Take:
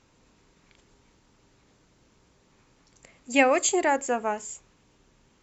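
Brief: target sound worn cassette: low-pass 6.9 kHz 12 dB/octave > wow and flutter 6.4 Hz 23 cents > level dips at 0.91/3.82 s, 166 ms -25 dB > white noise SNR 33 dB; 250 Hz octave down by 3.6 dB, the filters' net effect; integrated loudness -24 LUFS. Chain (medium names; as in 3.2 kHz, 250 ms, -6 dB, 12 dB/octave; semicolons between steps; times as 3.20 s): low-pass 6.9 kHz 12 dB/octave; peaking EQ 250 Hz -4.5 dB; wow and flutter 6.4 Hz 23 cents; level dips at 0.91/3.82 s, 166 ms -25 dB; white noise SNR 33 dB; trim +2 dB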